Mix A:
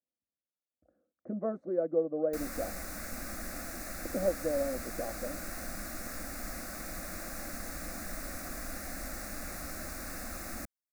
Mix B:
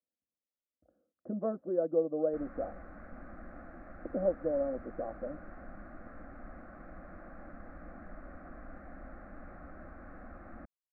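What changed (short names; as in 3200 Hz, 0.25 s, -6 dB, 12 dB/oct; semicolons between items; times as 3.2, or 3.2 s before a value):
background -5.5 dB; master: add LPF 1500 Hz 24 dB/oct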